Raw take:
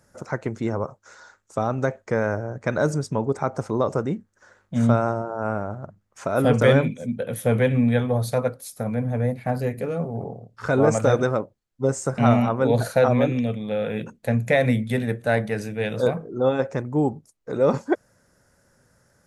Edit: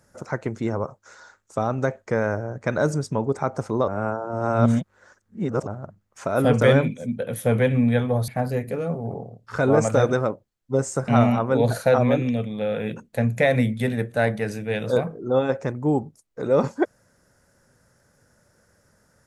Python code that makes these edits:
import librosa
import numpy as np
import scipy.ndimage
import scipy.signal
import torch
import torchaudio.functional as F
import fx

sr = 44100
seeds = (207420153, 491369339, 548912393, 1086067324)

y = fx.edit(x, sr, fx.reverse_span(start_s=3.88, length_s=1.79),
    fx.cut(start_s=8.28, length_s=1.1), tone=tone)